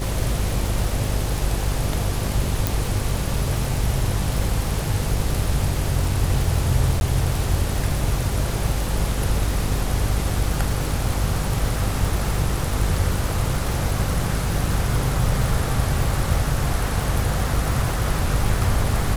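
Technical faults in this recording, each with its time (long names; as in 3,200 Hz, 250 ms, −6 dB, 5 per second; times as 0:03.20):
mains buzz 50 Hz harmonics 10 −26 dBFS
surface crackle 340 per second −27 dBFS
0:02.67: click
0:07.00–0:07.01: drop-out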